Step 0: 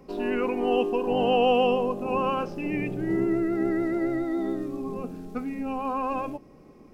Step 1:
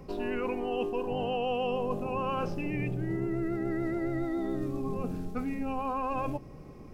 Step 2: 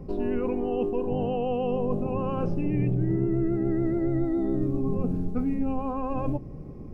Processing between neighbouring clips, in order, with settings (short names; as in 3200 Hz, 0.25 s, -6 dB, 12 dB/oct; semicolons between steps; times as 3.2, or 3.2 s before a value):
resonant low shelf 170 Hz +7 dB, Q 1.5; reverse; compressor, threshold -31 dBFS, peak gain reduction 12 dB; reverse; gain +2.5 dB
tilt shelf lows +9 dB, about 760 Hz